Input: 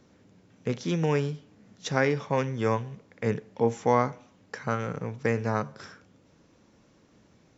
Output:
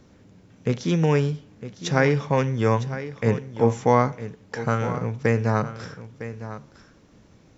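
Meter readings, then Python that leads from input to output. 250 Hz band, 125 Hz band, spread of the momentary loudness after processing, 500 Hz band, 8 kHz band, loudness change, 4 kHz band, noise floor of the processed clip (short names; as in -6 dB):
+5.5 dB, +8.0 dB, 16 LU, +4.5 dB, n/a, +5.0 dB, +4.0 dB, -54 dBFS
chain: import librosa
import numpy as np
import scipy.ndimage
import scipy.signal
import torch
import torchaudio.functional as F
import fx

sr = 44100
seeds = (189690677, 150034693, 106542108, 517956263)

y = fx.low_shelf(x, sr, hz=87.0, db=11.0)
y = y + 10.0 ** (-13.0 / 20.0) * np.pad(y, (int(957 * sr / 1000.0), 0))[:len(y)]
y = y * librosa.db_to_amplitude(4.0)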